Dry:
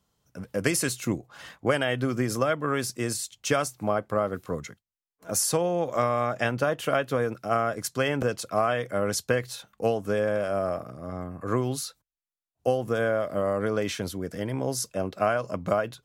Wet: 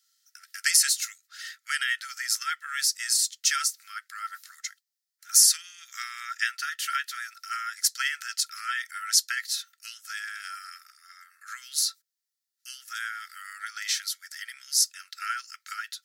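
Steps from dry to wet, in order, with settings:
Chebyshev high-pass with heavy ripple 1,300 Hz, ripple 9 dB
spectral tilt +3 dB per octave
level +5 dB

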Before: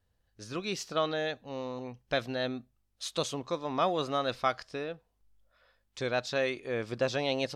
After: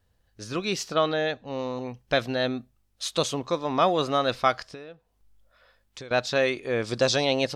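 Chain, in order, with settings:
0:00.94–0:01.59: high-frequency loss of the air 64 metres
0:04.69–0:06.11: downward compressor 5 to 1, threshold −47 dBFS, peak gain reduction 17 dB
0:06.84–0:07.25: flat-topped bell 6,000 Hz +8.5 dB
level +6.5 dB

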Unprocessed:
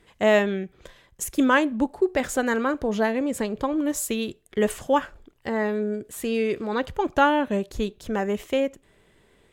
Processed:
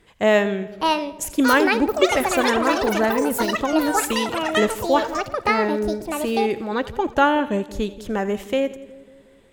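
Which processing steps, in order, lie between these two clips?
echo with a time of its own for lows and highs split 610 Hz, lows 182 ms, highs 84 ms, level −16 dB
delay with pitch and tempo change per echo 675 ms, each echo +7 semitones, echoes 3
level +2 dB

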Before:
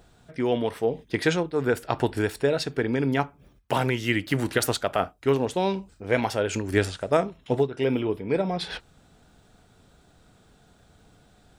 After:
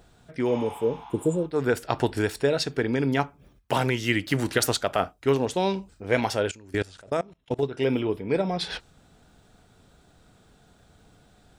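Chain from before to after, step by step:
0:00.51–0:01.41: healed spectral selection 660–6,900 Hz both
dynamic equaliser 5,800 Hz, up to +4 dB, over −49 dBFS, Q 1
0:06.51–0:07.63: output level in coarse steps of 24 dB

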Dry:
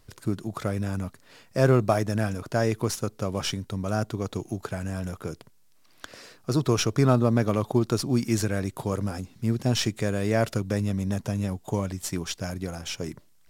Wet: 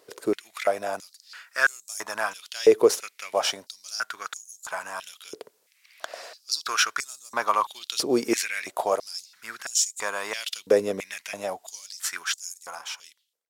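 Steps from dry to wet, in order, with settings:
fade-out on the ending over 1.08 s
high-pass on a step sequencer 3 Hz 450–7,100 Hz
level +3.5 dB

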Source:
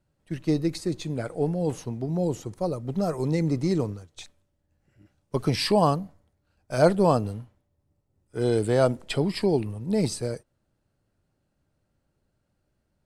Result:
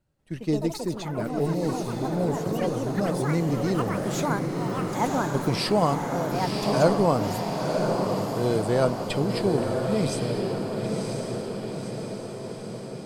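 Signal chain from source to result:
delay with pitch and tempo change per echo 189 ms, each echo +6 semitones, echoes 3, each echo −6 dB
feedback delay with all-pass diffusion 1,000 ms, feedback 62%, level −3.5 dB
level −1.5 dB

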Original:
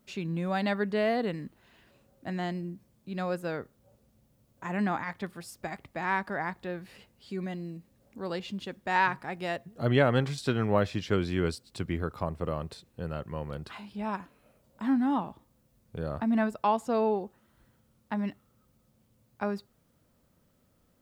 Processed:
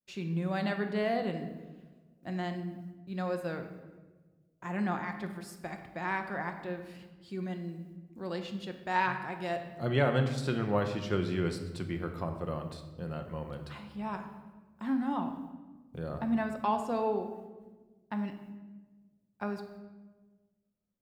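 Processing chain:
downward expander −54 dBFS
rectangular room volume 940 cubic metres, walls mixed, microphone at 0.89 metres
level −4.5 dB

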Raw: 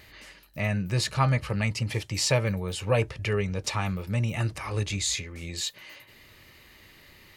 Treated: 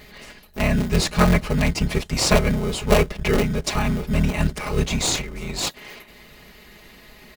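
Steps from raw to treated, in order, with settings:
sub-harmonics by changed cycles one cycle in 3, inverted
comb filter 4.8 ms, depth 92%
in parallel at −6 dB: sample-rate reduction 1,700 Hz
on the sum: level +2.5 dB

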